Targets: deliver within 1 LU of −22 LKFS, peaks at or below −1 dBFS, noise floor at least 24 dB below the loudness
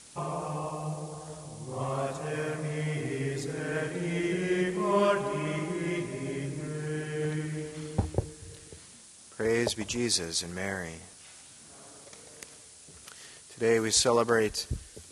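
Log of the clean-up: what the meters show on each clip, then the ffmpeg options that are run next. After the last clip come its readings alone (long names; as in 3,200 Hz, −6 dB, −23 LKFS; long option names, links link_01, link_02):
background noise floor −52 dBFS; target noise floor −55 dBFS; integrated loudness −30.5 LKFS; sample peak −11.0 dBFS; target loudness −22.0 LKFS
→ -af "afftdn=noise_reduction=6:noise_floor=-52"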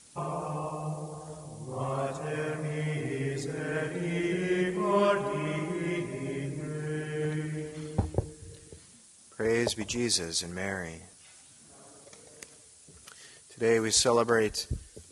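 background noise floor −56 dBFS; integrated loudness −30.5 LKFS; sample peak −11.0 dBFS; target loudness −22.0 LKFS
→ -af "volume=8.5dB"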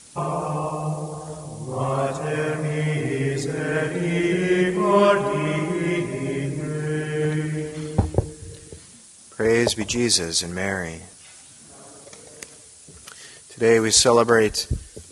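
integrated loudness −22.0 LKFS; sample peak −2.5 dBFS; background noise floor −47 dBFS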